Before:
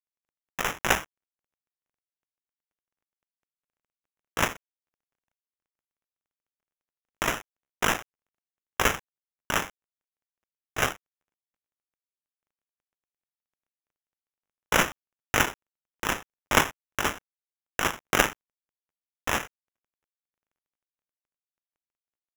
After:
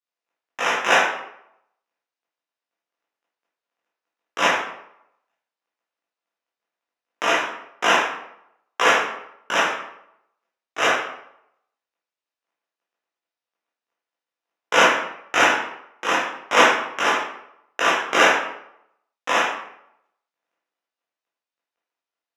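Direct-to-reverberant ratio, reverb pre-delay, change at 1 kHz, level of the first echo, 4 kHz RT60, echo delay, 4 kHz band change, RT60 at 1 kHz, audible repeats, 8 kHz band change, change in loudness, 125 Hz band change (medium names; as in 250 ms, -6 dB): -9.0 dB, 12 ms, +9.5 dB, no echo, 0.55 s, no echo, +8.0 dB, 0.75 s, no echo, +1.5 dB, +7.5 dB, -8.0 dB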